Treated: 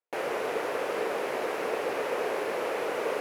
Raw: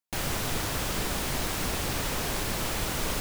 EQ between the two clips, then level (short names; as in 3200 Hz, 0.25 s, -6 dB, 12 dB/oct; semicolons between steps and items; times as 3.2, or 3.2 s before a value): resonant high-pass 460 Hz, resonance Q 3.6; air absorption 68 m; band shelf 5300 Hz -10 dB; 0.0 dB